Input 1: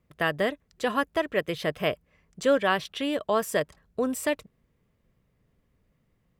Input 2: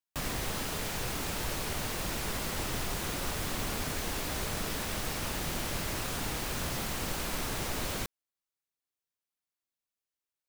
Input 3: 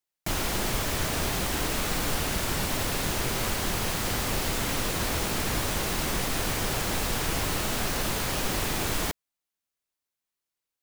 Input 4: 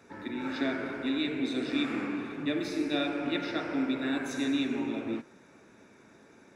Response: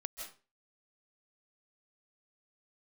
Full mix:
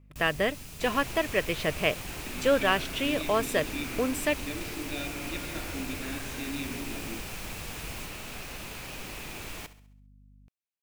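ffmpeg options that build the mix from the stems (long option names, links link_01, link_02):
-filter_complex "[0:a]volume=-1.5dB[link_01];[1:a]bass=frequency=250:gain=12,treble=frequency=4000:gain=10,aeval=exprs='val(0)+0.0141*(sin(2*PI*50*n/s)+sin(2*PI*2*50*n/s)/2+sin(2*PI*3*50*n/s)/3+sin(2*PI*4*50*n/s)/4+sin(2*PI*5*50*n/s)/5)':channel_layout=same,volume=-17.5dB[link_02];[2:a]adelay=550,volume=-13dB,asplit=2[link_03][link_04];[link_04]volume=-15dB[link_05];[3:a]adelay=2000,volume=-8dB[link_06];[link_05]aecho=0:1:67|134|201|268|335|402:1|0.45|0.202|0.0911|0.041|0.0185[link_07];[link_01][link_02][link_03][link_06][link_07]amix=inputs=5:normalize=0,equalizer=frequency=2500:width_type=o:width=0.43:gain=8.5"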